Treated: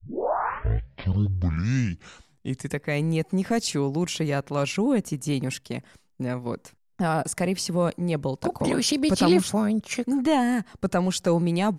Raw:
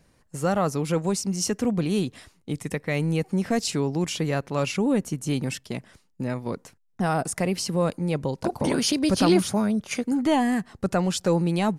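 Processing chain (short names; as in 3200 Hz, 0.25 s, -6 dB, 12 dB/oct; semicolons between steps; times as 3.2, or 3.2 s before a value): tape start at the beginning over 2.84 s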